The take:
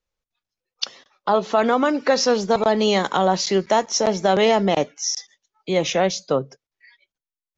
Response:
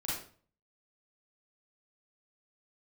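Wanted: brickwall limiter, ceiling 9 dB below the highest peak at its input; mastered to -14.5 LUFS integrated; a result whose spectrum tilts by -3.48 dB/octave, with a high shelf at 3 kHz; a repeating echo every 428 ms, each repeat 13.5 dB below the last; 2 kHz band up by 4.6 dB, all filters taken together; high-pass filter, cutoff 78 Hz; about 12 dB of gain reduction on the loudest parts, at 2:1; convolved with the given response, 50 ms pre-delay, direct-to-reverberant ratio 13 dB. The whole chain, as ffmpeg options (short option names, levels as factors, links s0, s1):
-filter_complex "[0:a]highpass=78,equalizer=f=2000:t=o:g=8,highshelf=f=3000:g=-6.5,acompressor=threshold=0.0178:ratio=2,alimiter=limit=0.0668:level=0:latency=1,aecho=1:1:428|856:0.211|0.0444,asplit=2[s0][s1];[1:a]atrim=start_sample=2205,adelay=50[s2];[s1][s2]afir=irnorm=-1:irlink=0,volume=0.15[s3];[s0][s3]amix=inputs=2:normalize=0,volume=9.44"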